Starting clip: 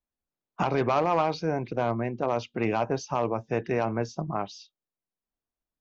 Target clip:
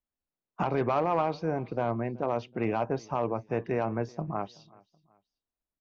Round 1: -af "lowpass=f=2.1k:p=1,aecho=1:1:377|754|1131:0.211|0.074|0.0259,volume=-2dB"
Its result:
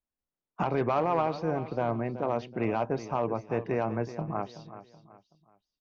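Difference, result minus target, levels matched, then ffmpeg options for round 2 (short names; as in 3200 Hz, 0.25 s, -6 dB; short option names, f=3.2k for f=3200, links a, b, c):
echo-to-direct +11 dB
-af "lowpass=f=2.1k:p=1,aecho=1:1:377|754:0.0596|0.0208,volume=-2dB"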